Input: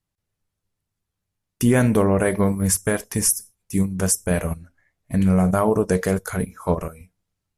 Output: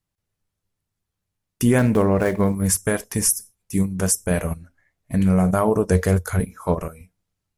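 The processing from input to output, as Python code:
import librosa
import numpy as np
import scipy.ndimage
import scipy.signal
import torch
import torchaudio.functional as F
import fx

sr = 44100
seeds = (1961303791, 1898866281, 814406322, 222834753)

y = fx.median_filter(x, sr, points=9, at=(1.78, 2.55))
y = fx.peak_eq(y, sr, hz=87.0, db=12.5, octaves=0.56, at=(5.91, 6.4))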